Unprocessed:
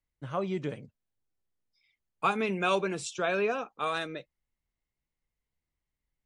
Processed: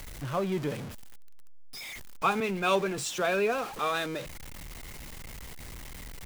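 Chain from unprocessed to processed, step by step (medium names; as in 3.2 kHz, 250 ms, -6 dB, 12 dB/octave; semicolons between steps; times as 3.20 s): jump at every zero crossing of -35 dBFS; 2.40–2.98 s: three bands expanded up and down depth 70%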